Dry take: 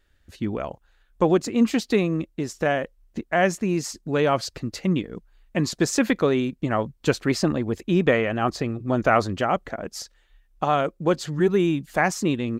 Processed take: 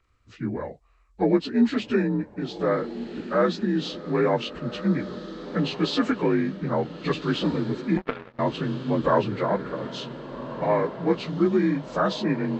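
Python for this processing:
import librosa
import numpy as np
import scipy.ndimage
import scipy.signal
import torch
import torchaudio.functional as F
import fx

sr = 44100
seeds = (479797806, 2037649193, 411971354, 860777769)

y = fx.partial_stretch(x, sr, pct=84)
y = fx.echo_diffused(y, sr, ms=1515, feedback_pct=46, wet_db=-12)
y = fx.power_curve(y, sr, exponent=3.0, at=(7.97, 8.39))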